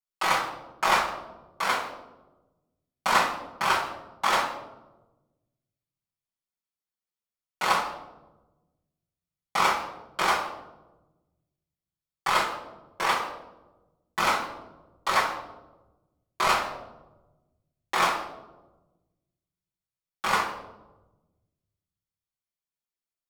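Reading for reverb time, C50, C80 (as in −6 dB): 1.1 s, 6.5 dB, 9.5 dB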